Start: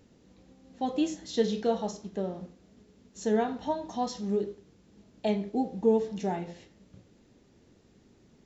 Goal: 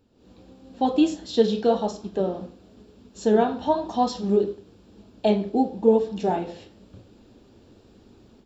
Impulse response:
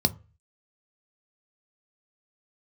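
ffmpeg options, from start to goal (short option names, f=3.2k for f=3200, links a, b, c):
-af "dynaudnorm=f=140:g=3:m=13.5dB,equalizer=f=160:t=o:w=0.33:g=-11,equalizer=f=2k:t=o:w=0.33:g=-11,equalizer=f=6.3k:t=o:w=0.33:g=-11,flanger=delay=0.8:depth=9.2:regen=-74:speed=0.98:shape=sinusoidal"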